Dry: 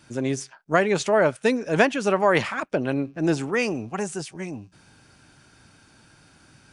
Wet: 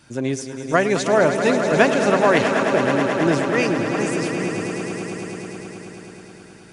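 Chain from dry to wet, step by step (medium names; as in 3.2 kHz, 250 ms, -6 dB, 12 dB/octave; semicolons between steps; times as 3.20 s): echo with a slow build-up 107 ms, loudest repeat 5, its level -10.5 dB; trim +2 dB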